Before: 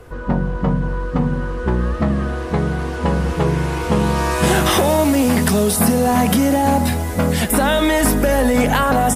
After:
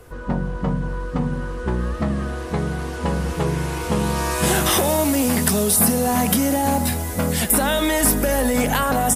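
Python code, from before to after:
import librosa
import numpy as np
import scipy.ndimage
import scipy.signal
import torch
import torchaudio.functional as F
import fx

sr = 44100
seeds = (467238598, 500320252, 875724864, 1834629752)

y = fx.high_shelf(x, sr, hz=5700.0, db=10.0)
y = F.gain(torch.from_numpy(y), -4.5).numpy()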